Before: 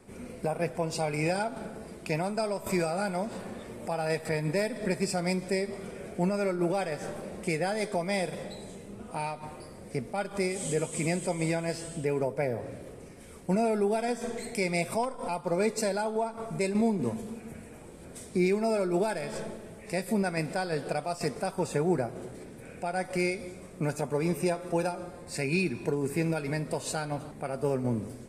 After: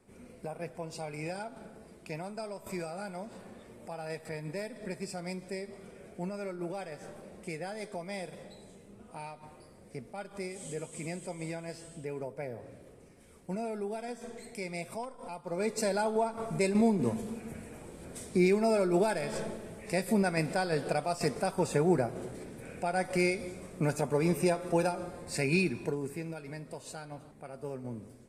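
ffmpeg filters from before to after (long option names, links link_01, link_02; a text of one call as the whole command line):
ffmpeg -i in.wav -af "volume=0.5dB,afade=type=in:start_time=15.45:duration=0.57:silence=0.316228,afade=type=out:start_time=25.53:duration=0.69:silence=0.266073" out.wav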